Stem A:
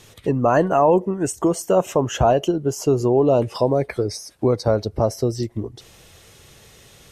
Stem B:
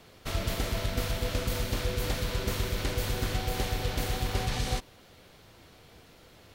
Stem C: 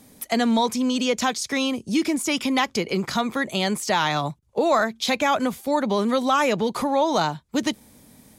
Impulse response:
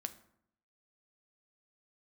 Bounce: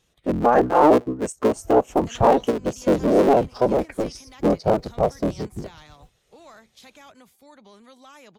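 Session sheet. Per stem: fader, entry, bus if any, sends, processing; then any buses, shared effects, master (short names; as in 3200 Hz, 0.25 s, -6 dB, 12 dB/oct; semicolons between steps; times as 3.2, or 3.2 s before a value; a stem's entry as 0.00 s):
+3.0 dB, 0.00 s, no send, cycle switcher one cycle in 3, inverted; low shelf 470 Hz -4.5 dB
-0.5 dB, 1.30 s, no send, LPF 1900 Hz; reverb removal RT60 1.9 s; modulation noise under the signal 14 dB; auto duck -8 dB, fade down 2.00 s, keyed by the first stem
-9.0 dB, 1.75 s, no send, spectral compressor 2:1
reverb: off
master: spectral expander 1.5:1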